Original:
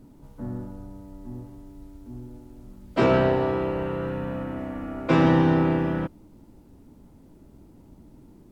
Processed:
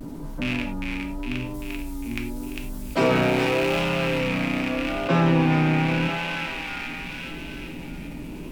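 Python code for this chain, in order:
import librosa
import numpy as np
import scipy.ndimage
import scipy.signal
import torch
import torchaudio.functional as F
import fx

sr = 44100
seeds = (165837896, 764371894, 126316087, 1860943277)

y = fx.rattle_buzz(x, sr, strikes_db=-33.0, level_db=-21.0)
y = fx.high_shelf(y, sr, hz=4700.0, db=11.5, at=(1.54, 3.79))
y = fx.echo_thinned(y, sr, ms=401, feedback_pct=58, hz=990.0, wet_db=-6.5)
y = fx.vibrato(y, sr, rate_hz=0.84, depth_cents=63.0)
y = fx.peak_eq(y, sr, hz=100.0, db=-6.0, octaves=0.77)
y = fx.rev_gated(y, sr, seeds[0], gate_ms=130, shape='falling', drr_db=3.0)
y = fx.env_flatten(y, sr, amount_pct=50)
y = F.gain(torch.from_numpy(y), -3.5).numpy()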